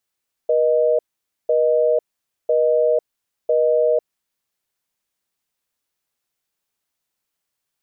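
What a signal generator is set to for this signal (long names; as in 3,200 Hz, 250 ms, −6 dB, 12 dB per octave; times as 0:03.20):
call progress tone busy tone, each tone −16.5 dBFS 3.69 s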